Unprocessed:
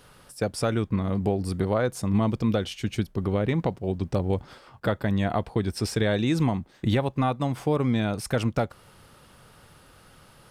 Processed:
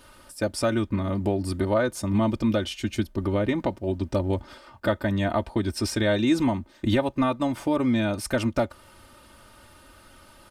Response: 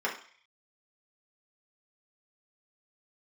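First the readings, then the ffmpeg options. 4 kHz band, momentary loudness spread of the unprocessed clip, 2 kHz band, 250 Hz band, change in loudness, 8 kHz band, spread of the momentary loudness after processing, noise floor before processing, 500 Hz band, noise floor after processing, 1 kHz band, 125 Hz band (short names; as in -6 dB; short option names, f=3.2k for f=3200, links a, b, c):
+2.0 dB, 6 LU, +2.5 dB, +2.0 dB, +1.0 dB, +2.0 dB, 6 LU, -55 dBFS, +1.5 dB, -53 dBFS, +0.5 dB, -2.5 dB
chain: -af "aecho=1:1:3.3:0.74"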